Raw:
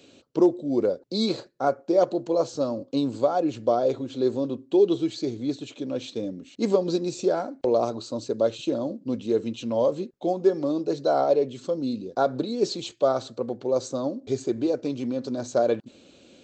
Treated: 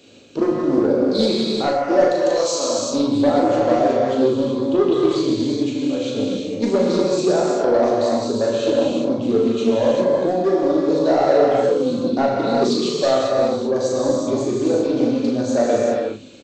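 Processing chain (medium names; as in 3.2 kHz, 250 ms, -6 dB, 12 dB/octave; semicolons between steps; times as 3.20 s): 2.06–2.79 s: tilt EQ +4.5 dB/octave; saturation -15.5 dBFS, distortion -16 dB; doubling 38 ms -5.5 dB; gated-style reverb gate 420 ms flat, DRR -3.5 dB; loudspeaker Doppler distortion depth 0.13 ms; trim +3 dB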